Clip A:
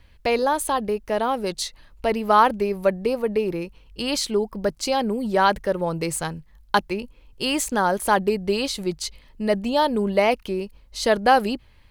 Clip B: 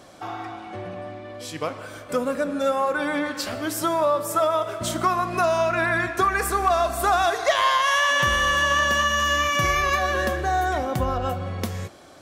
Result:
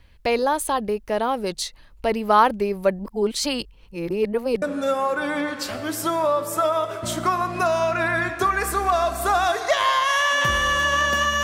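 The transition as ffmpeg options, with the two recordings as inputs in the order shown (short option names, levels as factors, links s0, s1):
-filter_complex "[0:a]apad=whole_dur=11.43,atrim=end=11.43,asplit=2[s0][s1];[s0]atrim=end=2.992[s2];[s1]atrim=start=2.988:end=4.622,asetpts=PTS-STARTPTS,areverse[s3];[1:a]atrim=start=2.398:end=9.21[s4];[s2][s3]acrossfade=d=0.004:c1=hsin:c2=hsin[s5];[s5][s4]acrossfade=d=0.004:c1=hsin:c2=hsin"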